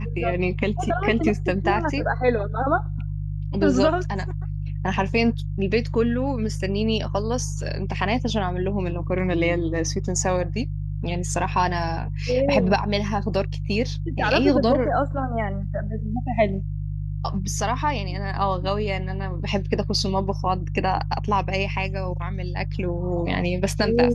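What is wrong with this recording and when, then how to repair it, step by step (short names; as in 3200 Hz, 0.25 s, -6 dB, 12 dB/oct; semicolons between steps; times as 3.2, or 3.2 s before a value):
hum 50 Hz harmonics 3 -28 dBFS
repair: de-hum 50 Hz, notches 3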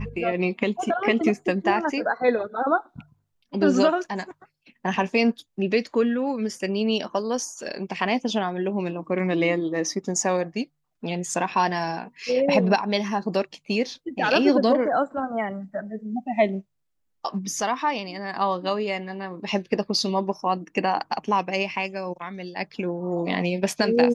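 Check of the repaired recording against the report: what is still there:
none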